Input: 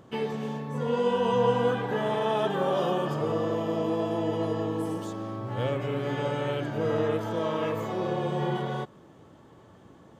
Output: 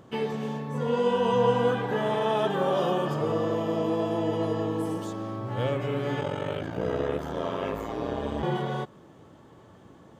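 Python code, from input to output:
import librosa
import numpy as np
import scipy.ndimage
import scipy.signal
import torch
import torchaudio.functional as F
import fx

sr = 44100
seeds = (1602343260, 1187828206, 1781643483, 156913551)

y = fx.ring_mod(x, sr, carrier_hz=fx.line((6.2, 21.0), (8.42, 75.0)), at=(6.2, 8.42), fade=0.02)
y = y * 10.0 ** (1.0 / 20.0)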